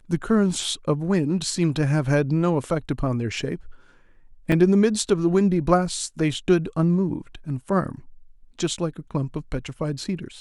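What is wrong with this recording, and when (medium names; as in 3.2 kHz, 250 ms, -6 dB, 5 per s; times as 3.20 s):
4.52 s: dropout 2.1 ms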